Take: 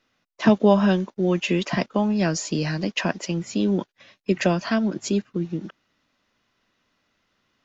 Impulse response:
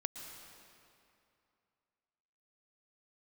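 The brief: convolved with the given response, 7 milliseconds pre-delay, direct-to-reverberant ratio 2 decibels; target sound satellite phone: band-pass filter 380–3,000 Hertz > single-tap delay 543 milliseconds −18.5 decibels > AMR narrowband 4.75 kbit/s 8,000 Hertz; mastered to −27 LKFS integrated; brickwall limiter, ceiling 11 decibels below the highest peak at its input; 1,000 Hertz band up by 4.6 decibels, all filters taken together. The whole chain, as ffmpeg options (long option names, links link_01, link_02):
-filter_complex "[0:a]equalizer=frequency=1000:width_type=o:gain=6,alimiter=limit=-13.5dB:level=0:latency=1,asplit=2[link_01][link_02];[1:a]atrim=start_sample=2205,adelay=7[link_03];[link_02][link_03]afir=irnorm=-1:irlink=0,volume=-1.5dB[link_04];[link_01][link_04]amix=inputs=2:normalize=0,highpass=380,lowpass=3000,aecho=1:1:543:0.119,volume=3dB" -ar 8000 -c:a libopencore_amrnb -b:a 4750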